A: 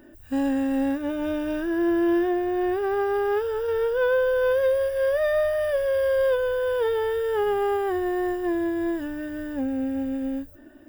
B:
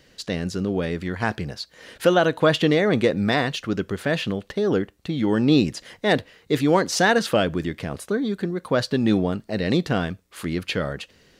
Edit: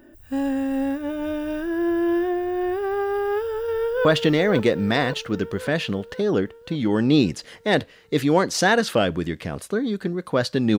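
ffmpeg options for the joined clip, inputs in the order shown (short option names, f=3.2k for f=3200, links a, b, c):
-filter_complex "[0:a]apad=whole_dur=10.78,atrim=end=10.78,atrim=end=4.052[a];[1:a]atrim=start=2.428:end=9.16[b];[a][b]acrossfade=d=0.004:c1=hsin:c2=hsin,asplit=2[c][d];[d]afade=t=in:st=3.42:d=0.01,afade=t=out:st=4.05:d=0.01,aecho=0:1:540|1080|1620|2160|2700|3240|3780|4320:0.530884|0.318531|0.191118|0.114671|0.0688026|0.0412816|0.0247689|0.0148614[e];[c][e]amix=inputs=2:normalize=0"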